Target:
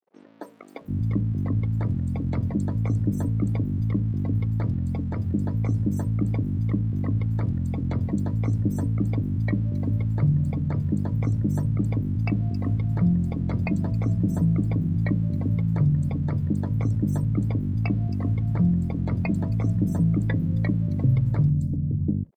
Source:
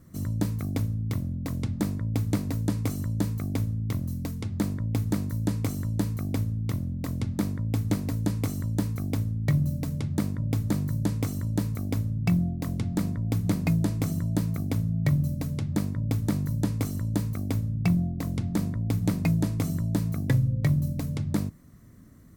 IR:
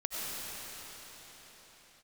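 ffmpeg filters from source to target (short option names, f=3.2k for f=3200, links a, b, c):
-filter_complex "[0:a]afftdn=nr=29:nf=-38,asplit=2[a][b];[b]alimiter=level_in=1.5dB:limit=-24dB:level=0:latency=1:release=90,volume=-1.5dB,volume=1dB[c];[a][c]amix=inputs=2:normalize=0,aeval=exprs='sgn(val(0))*max(abs(val(0))-0.00266,0)':c=same,acrossover=split=420|5200[d][e][f];[f]adelay=270[g];[d]adelay=740[h];[h][e][g]amix=inputs=3:normalize=0"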